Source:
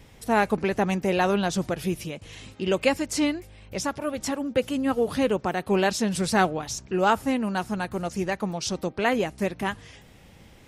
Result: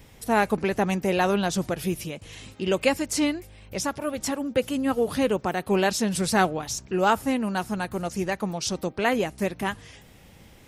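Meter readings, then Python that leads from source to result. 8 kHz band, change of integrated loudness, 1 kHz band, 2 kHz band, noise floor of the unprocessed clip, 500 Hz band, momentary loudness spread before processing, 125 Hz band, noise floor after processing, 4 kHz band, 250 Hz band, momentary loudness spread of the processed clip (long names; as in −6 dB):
+2.5 dB, 0.0 dB, 0.0 dB, 0.0 dB, −51 dBFS, 0.0 dB, 9 LU, 0.0 dB, −51 dBFS, +0.5 dB, 0.0 dB, 8 LU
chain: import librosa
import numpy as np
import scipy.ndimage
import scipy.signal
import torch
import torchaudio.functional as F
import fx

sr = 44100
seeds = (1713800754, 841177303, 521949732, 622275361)

y = fx.high_shelf(x, sr, hz=11000.0, db=9.0)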